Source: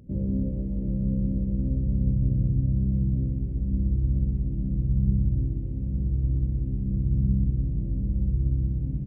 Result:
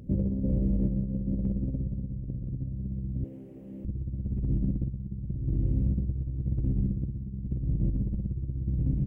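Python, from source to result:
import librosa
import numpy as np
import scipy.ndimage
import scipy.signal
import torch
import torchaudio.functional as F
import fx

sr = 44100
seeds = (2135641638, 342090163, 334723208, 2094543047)

y = fx.highpass(x, sr, hz=490.0, slope=12, at=(3.24, 3.85))
y = fx.over_compress(y, sr, threshold_db=-28.0, ratio=-0.5)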